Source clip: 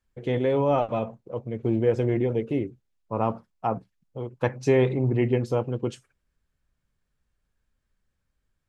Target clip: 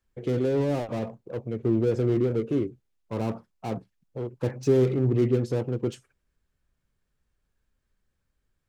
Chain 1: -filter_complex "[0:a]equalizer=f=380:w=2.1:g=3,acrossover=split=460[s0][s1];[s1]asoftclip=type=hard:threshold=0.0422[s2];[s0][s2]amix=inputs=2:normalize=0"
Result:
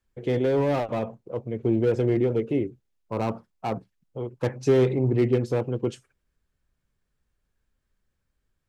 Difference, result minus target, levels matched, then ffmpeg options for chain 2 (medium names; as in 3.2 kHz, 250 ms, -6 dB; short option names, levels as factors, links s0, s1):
hard clipper: distortion -6 dB
-filter_complex "[0:a]equalizer=f=380:w=2.1:g=3,acrossover=split=460[s0][s1];[s1]asoftclip=type=hard:threshold=0.0133[s2];[s0][s2]amix=inputs=2:normalize=0"